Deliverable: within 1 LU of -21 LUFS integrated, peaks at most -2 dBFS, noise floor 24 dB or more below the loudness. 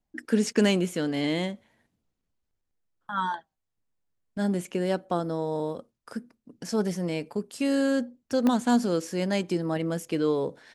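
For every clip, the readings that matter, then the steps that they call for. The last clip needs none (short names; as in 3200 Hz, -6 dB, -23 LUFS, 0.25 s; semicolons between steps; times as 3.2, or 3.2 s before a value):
dropouts 1; longest dropout 1.1 ms; loudness -27.5 LUFS; peak -9.5 dBFS; loudness target -21.0 LUFS
-> interpolate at 8.47, 1.1 ms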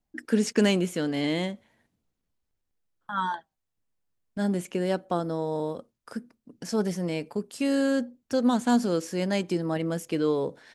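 dropouts 0; loudness -27.5 LUFS; peak -9.5 dBFS; loudness target -21.0 LUFS
-> gain +6.5 dB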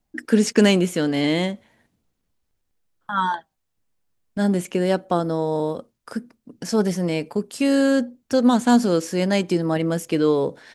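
loudness -21.0 LUFS; peak -3.0 dBFS; noise floor -75 dBFS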